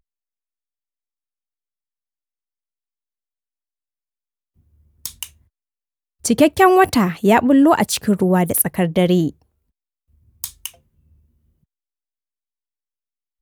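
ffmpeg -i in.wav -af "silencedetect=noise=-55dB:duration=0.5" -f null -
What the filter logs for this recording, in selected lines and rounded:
silence_start: 0.00
silence_end: 4.56 | silence_duration: 4.56
silence_start: 5.47
silence_end: 6.20 | silence_duration: 0.73
silence_start: 9.46
silence_end: 10.10 | silence_duration: 0.64
silence_start: 11.64
silence_end: 13.42 | silence_duration: 1.78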